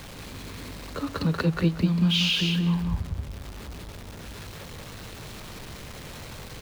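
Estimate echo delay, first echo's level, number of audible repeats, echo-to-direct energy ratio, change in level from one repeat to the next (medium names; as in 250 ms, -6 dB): 185 ms, -3.5 dB, 2, -3.5 dB, -15.5 dB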